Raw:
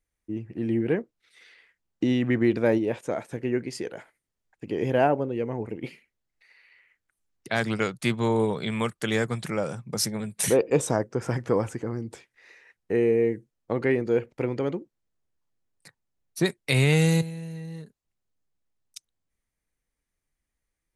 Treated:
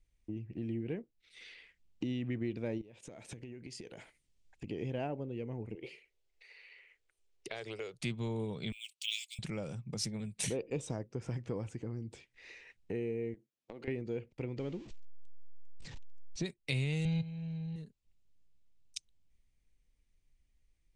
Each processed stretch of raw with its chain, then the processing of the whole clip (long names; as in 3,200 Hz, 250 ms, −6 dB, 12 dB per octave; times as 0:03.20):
0:02.81–0:04.64: high-shelf EQ 3,900 Hz +6.5 dB + downward compressor 8 to 1, threshold −41 dBFS
0:05.75–0:08.00: low shelf with overshoot 310 Hz −10 dB, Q 3 + downward compressor 2 to 1, threshold −34 dBFS
0:08.72–0:09.39: Butterworth high-pass 2,500 Hz 72 dB per octave + bad sample-rate conversion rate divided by 2×, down none, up zero stuff
0:13.34–0:13.88: gain on one half-wave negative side −3 dB + high-pass filter 260 Hz + downward compressor 4 to 1, threshold −41 dBFS
0:14.57–0:16.43: converter with a step at zero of −39 dBFS + Butterworth low-pass 7,700 Hz 48 dB per octave
0:17.05–0:17.76: low-pass filter 4,000 Hz 24 dB per octave + comb filter 1.3 ms, depth 97%
whole clip: spectral tilt −3.5 dB per octave; downward compressor 2 to 1, threshold −43 dBFS; flat-topped bell 4,600 Hz +14 dB 2.4 octaves; level −4.5 dB